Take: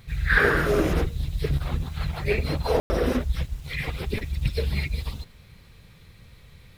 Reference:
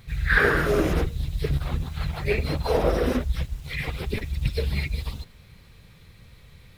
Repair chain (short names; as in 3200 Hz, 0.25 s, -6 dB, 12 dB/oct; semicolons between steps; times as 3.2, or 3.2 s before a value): room tone fill 2.8–2.9